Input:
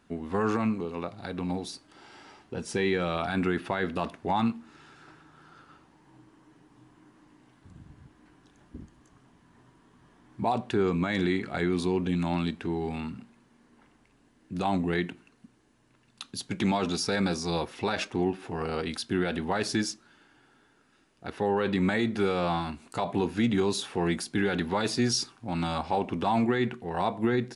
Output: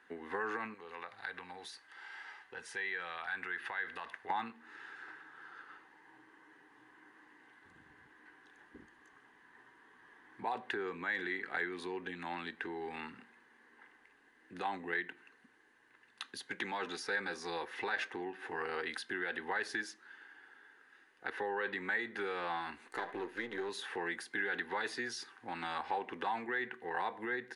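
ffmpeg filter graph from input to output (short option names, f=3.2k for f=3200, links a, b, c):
-filter_complex "[0:a]asettb=1/sr,asplit=3[a][b][c];[a]atrim=end=0.744[d];[b]atrim=start=0.74:end=4.3,asetpts=PTS-STARTPTS,afade=t=in:d=0.004:c=qsin,afade=t=out:st=3.556:d=0.004:c=qsin,equalizer=f=300:t=o:w=1.8:g=-11.5,acompressor=threshold=-40dB:ratio=2.5:attack=3.2:release=140:knee=1:detection=peak[e];[c]atrim=start=4.296[f];[d][e]acrossfade=d=0.004:c1=hsin:c2=qsin[g];[g][f]acrossfade=d=0.004:c1=qsin:c2=hsin,asettb=1/sr,asplit=3[h][i][j];[h]atrim=end=22.874[k];[i]atrim=start=22.87:end=23.69,asetpts=PTS-STARTPTS,afade=t=in:d=0.004:c=qsin,afade=t=out:st=0.816:d=0.004:c=qsin,aeval=exprs='if(lt(val(0),0),0.251*val(0),val(0))':c=same,equalizer=f=360:t=o:w=0.42:g=7[l];[j]atrim=start=23.686[m];[k][l]acrossfade=d=0.004:c1=hsin:c2=qsin[n];[n][m]acrossfade=d=0.004:c1=qsin:c2=hsin,superequalizer=8b=0.398:11b=2.82:15b=1.58:16b=2.82,acompressor=threshold=-33dB:ratio=3,acrossover=split=370 4200:gain=0.0794 1 0.141[o][p][q];[o][p][q]amix=inputs=3:normalize=0"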